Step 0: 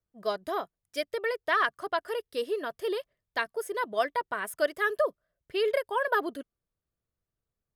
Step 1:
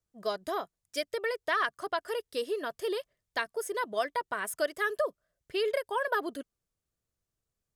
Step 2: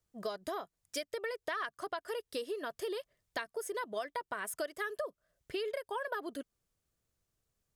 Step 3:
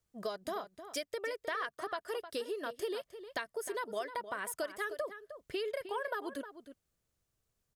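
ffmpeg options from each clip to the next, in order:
ffmpeg -i in.wav -af "acompressor=threshold=-31dB:ratio=1.5,equalizer=frequency=7200:width=0.96:gain=6.5" out.wav
ffmpeg -i in.wav -af "acompressor=threshold=-40dB:ratio=4,volume=3.5dB" out.wav
ffmpeg -i in.wav -filter_complex "[0:a]asplit=2[link_01][link_02];[link_02]adelay=309,volume=-11dB,highshelf=frequency=4000:gain=-6.95[link_03];[link_01][link_03]amix=inputs=2:normalize=0" out.wav

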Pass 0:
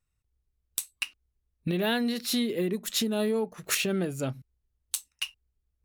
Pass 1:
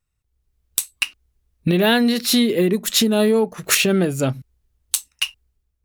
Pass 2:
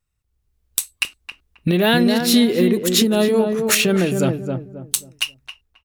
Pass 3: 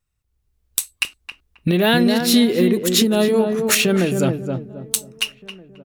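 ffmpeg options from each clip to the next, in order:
ffmpeg -i in.wav -af "dynaudnorm=framelen=120:gausssize=7:maxgain=8dB,volume=3dB" out.wav
ffmpeg -i in.wav -filter_complex "[0:a]asplit=2[link_01][link_02];[link_02]adelay=268,lowpass=frequency=980:poles=1,volume=-4dB,asplit=2[link_03][link_04];[link_04]adelay=268,lowpass=frequency=980:poles=1,volume=0.33,asplit=2[link_05][link_06];[link_06]adelay=268,lowpass=frequency=980:poles=1,volume=0.33,asplit=2[link_07][link_08];[link_08]adelay=268,lowpass=frequency=980:poles=1,volume=0.33[link_09];[link_01][link_03][link_05][link_07][link_09]amix=inputs=5:normalize=0" out.wav
ffmpeg -i in.wav -filter_complex "[0:a]asplit=2[link_01][link_02];[link_02]adelay=1574,volume=-24dB,highshelf=frequency=4000:gain=-35.4[link_03];[link_01][link_03]amix=inputs=2:normalize=0" out.wav

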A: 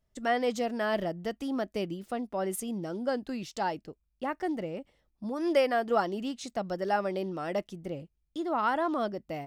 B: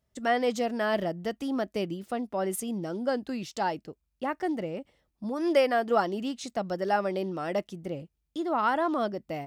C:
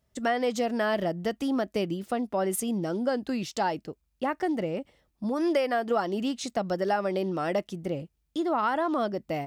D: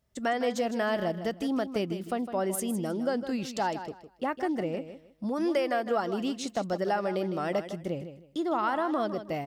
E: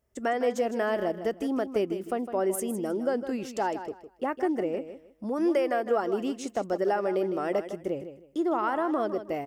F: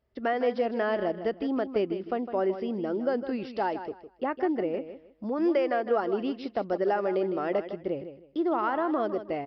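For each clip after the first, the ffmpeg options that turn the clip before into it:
ffmpeg -i in.wav -af "highpass=53,volume=2dB" out.wav
ffmpeg -i in.wav -af "acompressor=threshold=-27dB:ratio=4,volume=4dB" out.wav
ffmpeg -i in.wav -af "aecho=1:1:157|314|471:0.282|0.0648|0.0149,volume=-2dB" out.wav
ffmpeg -i in.wav -af "equalizer=frequency=160:width_type=o:width=0.67:gain=-8,equalizer=frequency=400:width_type=o:width=0.67:gain=6,equalizer=frequency=4000:width_type=o:width=0.67:gain=-10" out.wav
ffmpeg -i in.wav -af "aresample=11025,aresample=44100" out.wav

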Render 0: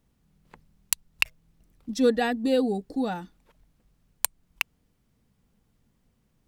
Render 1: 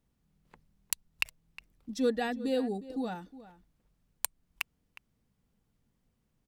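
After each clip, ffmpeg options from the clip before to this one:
ffmpeg -i in.wav -filter_complex "[0:a]asplit=2[link_01][link_02];[link_02]adelay=361.5,volume=-16dB,highshelf=frequency=4000:gain=-8.13[link_03];[link_01][link_03]amix=inputs=2:normalize=0,volume=-7dB" out.wav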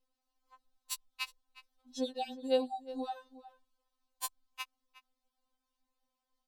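ffmpeg -i in.wav -af "equalizer=frequency=125:width_type=o:width=1:gain=9,equalizer=frequency=250:width_type=o:width=1:gain=-11,equalizer=frequency=1000:width_type=o:width=1:gain=11,equalizer=frequency=2000:width_type=o:width=1:gain=-6,equalizer=frequency=4000:width_type=o:width=1:gain=8,afftfilt=real='re*3.46*eq(mod(b,12),0)':imag='im*3.46*eq(mod(b,12),0)':win_size=2048:overlap=0.75,volume=-4.5dB" out.wav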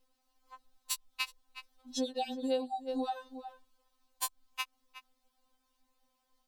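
ffmpeg -i in.wav -af "acompressor=threshold=-41dB:ratio=3,volume=8.5dB" out.wav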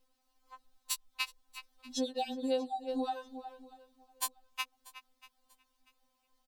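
ffmpeg -i in.wav -af "aecho=1:1:639|1278:0.0891|0.0267" out.wav

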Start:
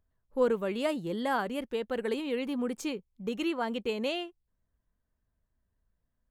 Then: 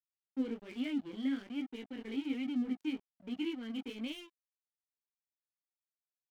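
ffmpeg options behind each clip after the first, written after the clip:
ffmpeg -i in.wav -filter_complex "[0:a]asplit=3[link_01][link_02][link_03];[link_01]bandpass=frequency=270:width_type=q:width=8,volume=0dB[link_04];[link_02]bandpass=frequency=2290:width_type=q:width=8,volume=-6dB[link_05];[link_03]bandpass=frequency=3010:width_type=q:width=8,volume=-9dB[link_06];[link_04][link_05][link_06]amix=inputs=3:normalize=0,flanger=delay=16:depth=6.8:speed=1.2,aeval=exprs='sgn(val(0))*max(abs(val(0))-0.00112,0)':channel_layout=same,volume=7.5dB" out.wav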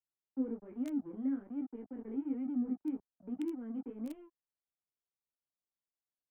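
ffmpeg -i in.wav -filter_complex "[0:a]highshelf=frequency=2400:gain=-9.5,acrossover=split=110|460|1400[link_01][link_02][link_03][link_04];[link_04]acrusher=bits=6:mix=0:aa=0.000001[link_05];[link_01][link_02][link_03][link_05]amix=inputs=4:normalize=0" out.wav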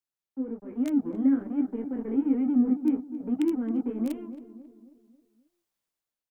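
ffmpeg -i in.wav -filter_complex "[0:a]dynaudnorm=framelen=290:gausssize=5:maxgain=12dB,asplit=2[link_01][link_02];[link_02]adelay=270,lowpass=frequency=1200:poles=1,volume=-12dB,asplit=2[link_03][link_04];[link_04]adelay=270,lowpass=frequency=1200:poles=1,volume=0.49,asplit=2[link_05][link_06];[link_06]adelay=270,lowpass=frequency=1200:poles=1,volume=0.49,asplit=2[link_07][link_08];[link_08]adelay=270,lowpass=frequency=1200:poles=1,volume=0.49,asplit=2[link_09][link_10];[link_10]adelay=270,lowpass=frequency=1200:poles=1,volume=0.49[link_11];[link_03][link_05][link_07][link_09][link_11]amix=inputs=5:normalize=0[link_12];[link_01][link_12]amix=inputs=2:normalize=0" out.wav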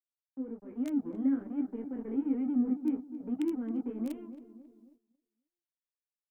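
ffmpeg -i in.wav -af "agate=range=-14dB:threshold=-55dB:ratio=16:detection=peak,volume=-6dB" out.wav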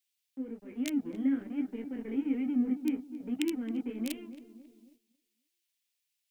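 ffmpeg -i in.wav -af "highshelf=frequency=1700:width_type=q:width=1.5:gain=13" out.wav

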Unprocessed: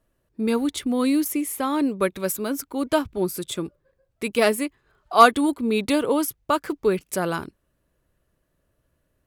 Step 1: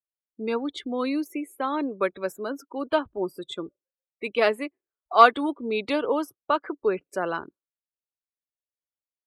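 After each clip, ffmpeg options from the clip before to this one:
ffmpeg -i in.wav -filter_complex "[0:a]afftdn=noise_reduction=35:noise_floor=-37,acrossover=split=320 4900:gain=0.224 1 0.1[link_01][link_02][link_03];[link_01][link_02][link_03]amix=inputs=3:normalize=0,volume=-1dB" out.wav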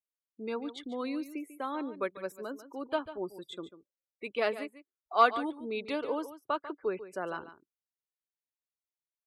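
ffmpeg -i in.wav -af "aecho=1:1:144:0.211,volume=-8.5dB" out.wav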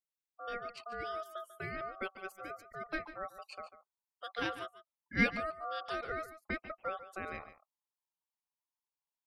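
ffmpeg -i in.wav -af "asubboost=boost=5.5:cutoff=190,aeval=exprs='val(0)*sin(2*PI*950*n/s)':channel_layout=same,volume=-2dB" out.wav

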